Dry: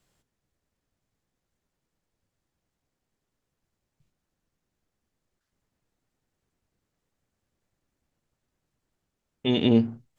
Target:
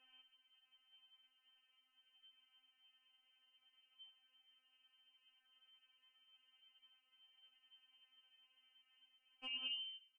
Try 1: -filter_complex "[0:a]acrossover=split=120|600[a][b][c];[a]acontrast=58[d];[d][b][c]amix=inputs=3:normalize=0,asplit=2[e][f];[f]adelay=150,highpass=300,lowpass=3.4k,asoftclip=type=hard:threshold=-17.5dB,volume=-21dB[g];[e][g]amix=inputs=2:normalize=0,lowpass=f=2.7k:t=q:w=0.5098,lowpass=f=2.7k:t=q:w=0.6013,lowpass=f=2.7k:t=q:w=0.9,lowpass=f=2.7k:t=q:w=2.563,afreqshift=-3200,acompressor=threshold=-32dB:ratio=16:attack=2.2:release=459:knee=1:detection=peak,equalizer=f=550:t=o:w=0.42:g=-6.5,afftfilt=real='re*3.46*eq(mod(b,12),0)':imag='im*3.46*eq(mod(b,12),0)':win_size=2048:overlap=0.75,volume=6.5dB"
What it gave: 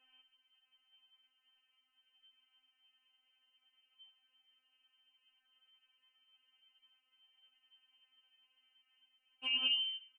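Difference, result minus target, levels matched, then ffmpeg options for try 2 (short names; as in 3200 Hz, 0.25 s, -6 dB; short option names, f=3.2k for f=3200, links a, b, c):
compressor: peak gain reduction -11 dB
-filter_complex "[0:a]acrossover=split=120|600[a][b][c];[a]acontrast=58[d];[d][b][c]amix=inputs=3:normalize=0,asplit=2[e][f];[f]adelay=150,highpass=300,lowpass=3.4k,asoftclip=type=hard:threshold=-17.5dB,volume=-21dB[g];[e][g]amix=inputs=2:normalize=0,lowpass=f=2.7k:t=q:w=0.5098,lowpass=f=2.7k:t=q:w=0.6013,lowpass=f=2.7k:t=q:w=0.9,lowpass=f=2.7k:t=q:w=2.563,afreqshift=-3200,acompressor=threshold=-43.5dB:ratio=16:attack=2.2:release=459:knee=1:detection=peak,equalizer=f=550:t=o:w=0.42:g=-6.5,afftfilt=real='re*3.46*eq(mod(b,12),0)':imag='im*3.46*eq(mod(b,12),0)':win_size=2048:overlap=0.75,volume=6.5dB"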